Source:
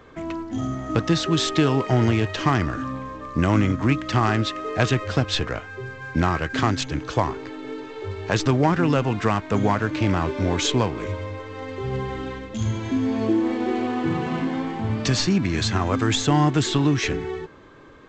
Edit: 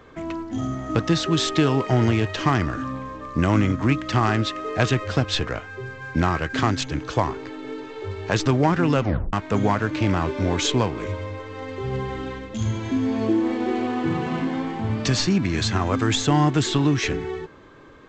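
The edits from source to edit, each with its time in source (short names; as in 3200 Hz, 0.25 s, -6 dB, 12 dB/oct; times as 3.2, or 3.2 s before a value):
9.01 tape stop 0.32 s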